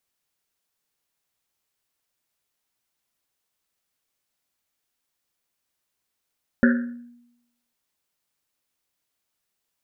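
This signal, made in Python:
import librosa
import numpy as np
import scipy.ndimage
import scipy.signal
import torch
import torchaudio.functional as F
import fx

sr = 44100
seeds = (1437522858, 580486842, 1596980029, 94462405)

y = fx.risset_drum(sr, seeds[0], length_s=1.1, hz=240.0, decay_s=0.87, noise_hz=1600.0, noise_width_hz=370.0, noise_pct=25)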